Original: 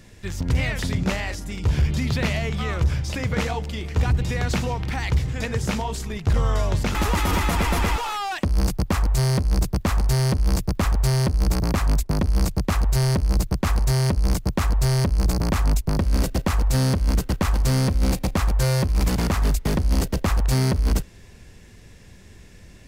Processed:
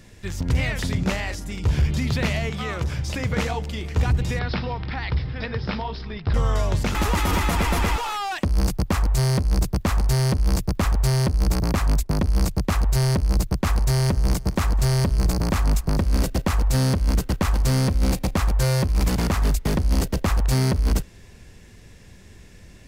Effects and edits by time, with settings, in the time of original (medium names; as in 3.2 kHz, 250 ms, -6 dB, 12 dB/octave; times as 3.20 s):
2.49–2.99 s: high-pass 130 Hz 6 dB/octave
4.39–6.34 s: rippled Chebyshev low-pass 5.3 kHz, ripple 3 dB
13.66–16.16 s: feedback delay 213 ms, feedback 36%, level -17.5 dB